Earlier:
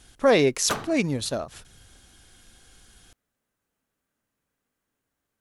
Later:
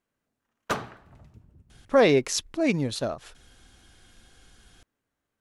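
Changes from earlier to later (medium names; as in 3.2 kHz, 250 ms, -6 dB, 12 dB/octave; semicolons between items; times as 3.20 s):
speech: entry +1.70 s; master: add treble shelf 6.8 kHz -9.5 dB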